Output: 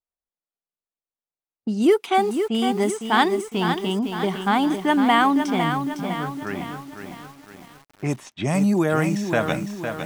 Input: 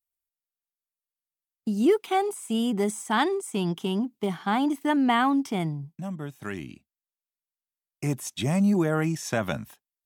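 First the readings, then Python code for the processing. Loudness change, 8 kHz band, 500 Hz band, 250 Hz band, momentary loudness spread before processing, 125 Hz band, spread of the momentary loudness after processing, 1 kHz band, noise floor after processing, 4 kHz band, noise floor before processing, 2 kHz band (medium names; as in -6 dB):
+4.5 dB, 0.0 dB, +5.0 dB, +3.5 dB, 13 LU, +2.5 dB, 13 LU, +6.5 dB, under -85 dBFS, +6.0 dB, under -85 dBFS, +6.5 dB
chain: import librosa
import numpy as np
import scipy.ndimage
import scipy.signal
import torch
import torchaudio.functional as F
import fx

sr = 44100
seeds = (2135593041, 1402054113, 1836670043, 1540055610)

y = fx.env_lowpass(x, sr, base_hz=860.0, full_db=-20.0)
y = fx.low_shelf(y, sr, hz=270.0, db=-6.0)
y = fx.echo_crushed(y, sr, ms=507, feedback_pct=55, bits=8, wet_db=-7)
y = y * librosa.db_to_amplitude(6.0)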